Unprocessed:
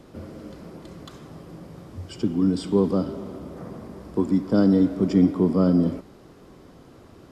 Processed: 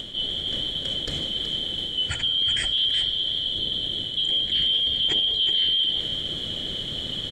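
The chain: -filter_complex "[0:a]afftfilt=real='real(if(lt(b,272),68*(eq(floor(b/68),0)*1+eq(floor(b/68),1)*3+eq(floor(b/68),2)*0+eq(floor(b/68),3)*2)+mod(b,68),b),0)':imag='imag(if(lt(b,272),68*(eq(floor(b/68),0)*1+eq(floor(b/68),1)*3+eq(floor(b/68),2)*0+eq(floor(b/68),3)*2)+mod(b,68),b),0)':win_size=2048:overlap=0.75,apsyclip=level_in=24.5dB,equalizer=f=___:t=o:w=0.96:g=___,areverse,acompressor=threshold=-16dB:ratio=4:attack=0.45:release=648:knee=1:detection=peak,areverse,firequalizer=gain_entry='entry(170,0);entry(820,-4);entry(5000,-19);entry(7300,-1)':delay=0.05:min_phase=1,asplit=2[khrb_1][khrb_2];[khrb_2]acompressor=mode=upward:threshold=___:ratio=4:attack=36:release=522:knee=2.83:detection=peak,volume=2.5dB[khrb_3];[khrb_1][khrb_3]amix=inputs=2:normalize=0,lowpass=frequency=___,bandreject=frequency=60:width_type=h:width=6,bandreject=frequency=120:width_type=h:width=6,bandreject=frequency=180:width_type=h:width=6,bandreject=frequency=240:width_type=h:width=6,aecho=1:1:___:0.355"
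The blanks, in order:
1000, -14.5, -44dB, 4100, 373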